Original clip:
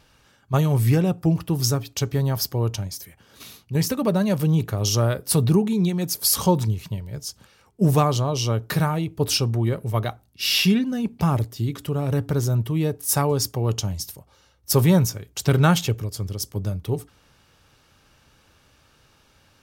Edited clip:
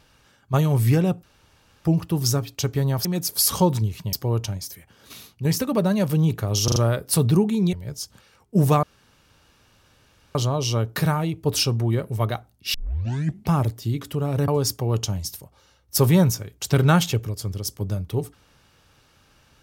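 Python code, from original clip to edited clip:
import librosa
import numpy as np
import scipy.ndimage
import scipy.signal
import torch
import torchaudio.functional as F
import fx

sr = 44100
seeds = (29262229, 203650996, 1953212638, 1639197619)

y = fx.edit(x, sr, fx.insert_room_tone(at_s=1.23, length_s=0.62),
    fx.stutter(start_s=4.94, slice_s=0.04, count=4),
    fx.move(start_s=5.91, length_s=1.08, to_s=2.43),
    fx.insert_room_tone(at_s=8.09, length_s=1.52),
    fx.tape_start(start_s=10.48, length_s=0.75),
    fx.cut(start_s=12.22, length_s=1.01), tone=tone)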